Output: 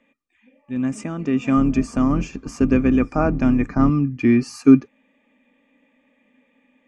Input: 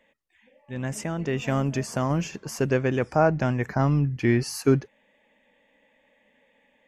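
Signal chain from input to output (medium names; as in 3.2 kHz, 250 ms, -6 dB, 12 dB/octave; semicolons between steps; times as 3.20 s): 1.57–3.90 s: octave divider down 2 oct, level +2 dB; Chebyshev low-pass 8.7 kHz, order 3; small resonant body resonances 260/1200/2400 Hz, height 16 dB, ringing for 55 ms; trim -2.5 dB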